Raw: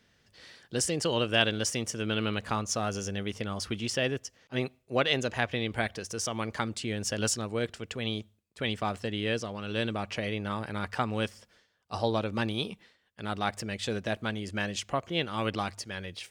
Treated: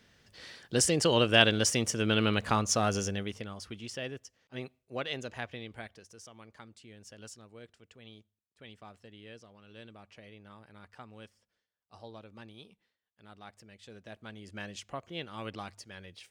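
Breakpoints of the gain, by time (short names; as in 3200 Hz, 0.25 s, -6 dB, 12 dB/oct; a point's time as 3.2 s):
3 s +3 dB
3.58 s -9.5 dB
5.41 s -9.5 dB
6.33 s -19.5 dB
13.83 s -19.5 dB
14.6 s -9.5 dB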